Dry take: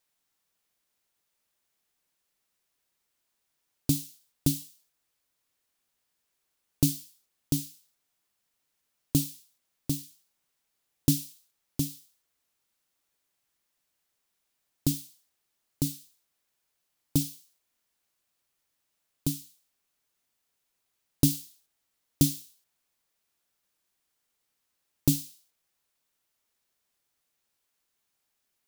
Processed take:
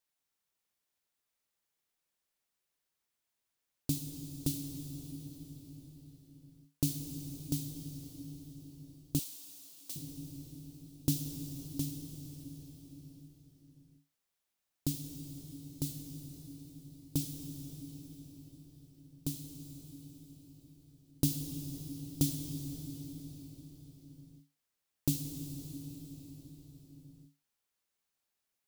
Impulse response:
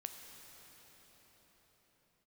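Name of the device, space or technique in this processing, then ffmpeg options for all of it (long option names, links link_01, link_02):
cathedral: -filter_complex "[1:a]atrim=start_sample=2205[link_01];[0:a][link_01]afir=irnorm=-1:irlink=0,asettb=1/sr,asplit=3[link_02][link_03][link_04];[link_02]atrim=end=9.194[link_05];[link_03]atrim=start=9.19:end=9.96,asetpts=PTS-STARTPTS,afade=type=in:duration=0.004:curve=qsin,afade=type=out:start_time=0.766:duration=0.004:curve=qsin,highpass=990[link_06];[link_04]atrim=start=9.956[link_07];[link_05][link_06]acrossfade=duration=0.004:curve1=hsin:curve2=qsin[link_08];[link_08][link_07]acrossfade=duration=0.004:curve1=qsin:curve2=hsin,volume=-3.5dB"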